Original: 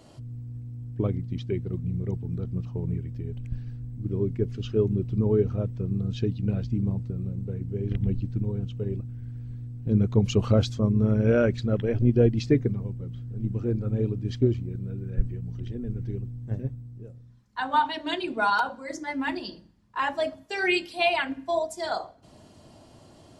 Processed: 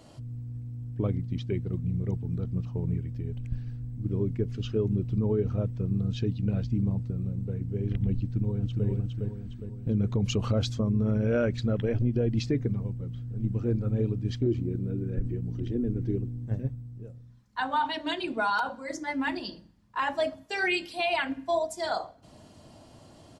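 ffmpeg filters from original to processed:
-filter_complex "[0:a]asplit=2[s0][s1];[s1]afade=t=in:st=8.22:d=0.01,afade=t=out:st=8.87:d=0.01,aecho=0:1:410|820|1230|1640|2050|2460|2870:0.668344|0.334172|0.167086|0.083543|0.0417715|0.0208857|0.0104429[s2];[s0][s2]amix=inputs=2:normalize=0,asettb=1/sr,asplit=3[s3][s4][s5];[s3]atrim=end=14.464[s6];[s4]atrim=start=14.46:end=16.46,asetpts=PTS-STARTPTS,afade=t=in:d=0.004:c=qsin,afade=t=out:st=1.996:d=0.004:c=qsin,equalizer=f=330:w=1.5:g=11.5[s7];[s5]atrim=start=16.456[s8];[s6][s7]acrossfade=d=0.004:c1=hsin:c2=qsin[s9];[s9][s8]acrossfade=d=0.004:c1=qsin:c2=hsin,equalizer=f=380:t=o:w=0.22:g=-4,alimiter=limit=0.126:level=0:latency=1:release=63"

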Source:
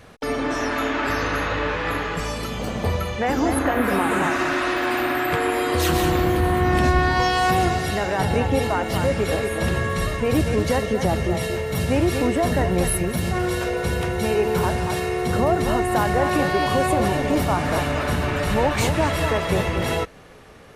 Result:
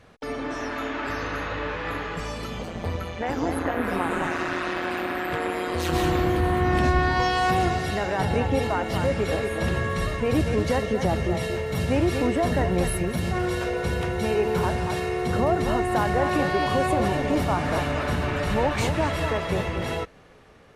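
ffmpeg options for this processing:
-filter_complex "[0:a]asplit=3[s0][s1][s2];[s0]afade=t=out:st=2.62:d=0.02[s3];[s1]tremolo=f=170:d=0.667,afade=t=in:st=2.62:d=0.02,afade=t=out:st=5.92:d=0.02[s4];[s2]afade=t=in:st=5.92:d=0.02[s5];[s3][s4][s5]amix=inputs=3:normalize=0,highshelf=f=9400:g=-10,dynaudnorm=f=740:g=7:m=1.78,volume=0.473"

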